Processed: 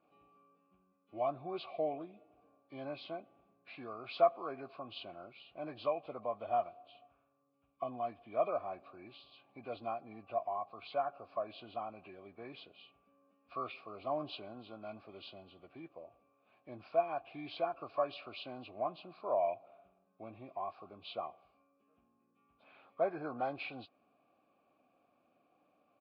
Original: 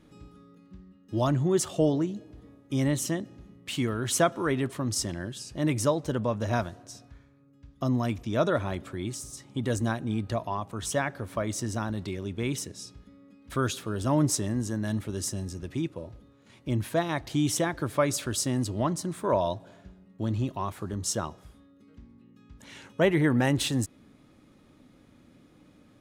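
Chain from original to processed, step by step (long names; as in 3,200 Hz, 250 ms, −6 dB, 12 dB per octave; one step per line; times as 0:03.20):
hearing-aid frequency compression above 1,000 Hz 1.5 to 1
formant filter a
downsampling to 11,025 Hz
level +1.5 dB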